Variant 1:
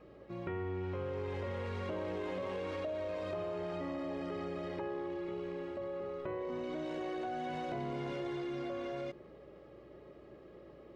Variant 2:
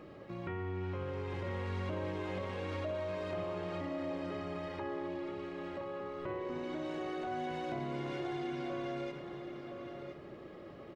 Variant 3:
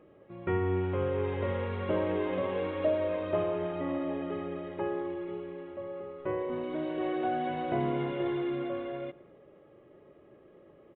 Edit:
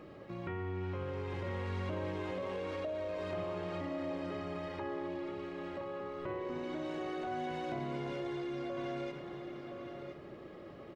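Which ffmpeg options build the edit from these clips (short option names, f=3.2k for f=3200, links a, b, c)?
-filter_complex "[0:a]asplit=2[a][b];[1:a]asplit=3[c][d][e];[c]atrim=end=2.312[f];[a]atrim=start=2.308:end=3.192[g];[d]atrim=start=3.188:end=7.982[h];[b]atrim=start=7.978:end=8.772[i];[e]atrim=start=8.768[j];[f][g]acrossfade=d=0.004:c1=hsin:c2=hsin[k];[k][h]acrossfade=d=0.004:c1=hsin:c2=hsin[l];[l][i]acrossfade=d=0.004:c1=hsin:c2=hsin[m];[m][j]acrossfade=d=0.004:c1=hsin:c2=hsin"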